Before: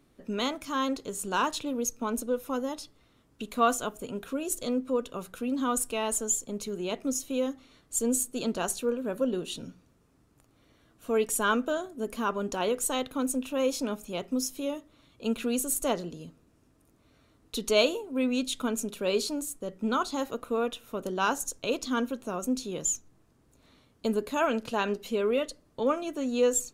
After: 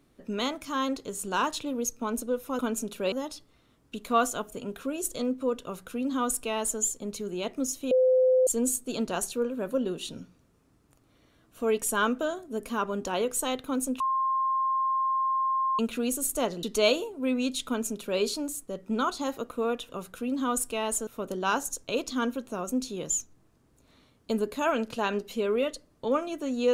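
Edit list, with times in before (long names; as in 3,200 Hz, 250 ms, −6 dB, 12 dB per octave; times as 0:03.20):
0:05.09–0:06.27: duplicate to 0:20.82
0:07.38–0:07.94: beep over 513 Hz −18 dBFS
0:13.47–0:15.26: beep over 1,060 Hz −23.5 dBFS
0:16.10–0:17.56: remove
0:18.60–0:19.13: duplicate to 0:02.59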